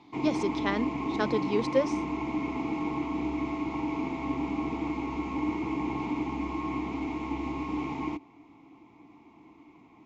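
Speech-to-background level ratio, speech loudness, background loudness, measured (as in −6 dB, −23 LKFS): 1.5 dB, −31.0 LKFS, −32.5 LKFS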